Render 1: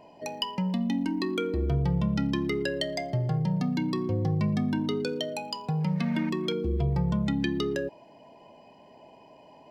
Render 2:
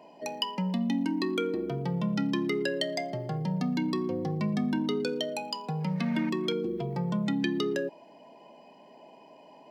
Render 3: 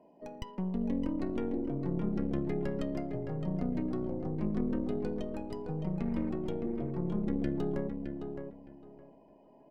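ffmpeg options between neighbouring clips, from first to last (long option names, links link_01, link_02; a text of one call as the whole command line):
ffmpeg -i in.wav -af "highpass=frequency=170:width=0.5412,highpass=frequency=170:width=1.3066" out.wav
ffmpeg -i in.wav -filter_complex "[0:a]aeval=exprs='0.188*(cos(1*acos(clip(val(0)/0.188,-1,1)))-cos(1*PI/2))+0.0841*(cos(4*acos(clip(val(0)/0.188,-1,1)))-cos(4*PI/2))+0.0237*(cos(6*acos(clip(val(0)/0.188,-1,1)))-cos(6*PI/2))':channel_layout=same,firequalizer=gain_entry='entry(320,0);entry(870,-8);entry(3500,-20)':delay=0.05:min_phase=1,asplit=2[link_01][link_02];[link_02]adelay=614,lowpass=frequency=3100:poles=1,volume=-6dB,asplit=2[link_03][link_04];[link_04]adelay=614,lowpass=frequency=3100:poles=1,volume=0.21,asplit=2[link_05][link_06];[link_06]adelay=614,lowpass=frequency=3100:poles=1,volume=0.21[link_07];[link_01][link_03][link_05][link_07]amix=inputs=4:normalize=0,volume=-4.5dB" out.wav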